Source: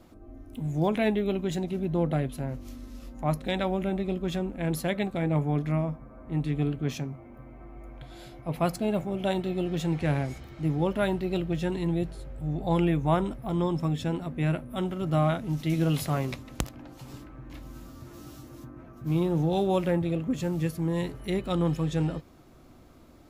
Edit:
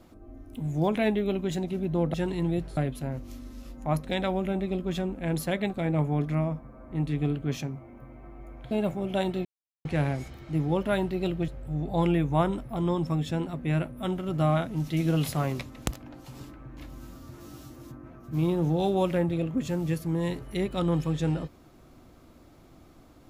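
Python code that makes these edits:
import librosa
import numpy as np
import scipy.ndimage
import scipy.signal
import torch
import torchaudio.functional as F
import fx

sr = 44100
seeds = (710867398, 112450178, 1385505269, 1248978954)

y = fx.edit(x, sr, fx.cut(start_s=8.08, length_s=0.73),
    fx.silence(start_s=9.55, length_s=0.4),
    fx.move(start_s=11.58, length_s=0.63, to_s=2.14), tone=tone)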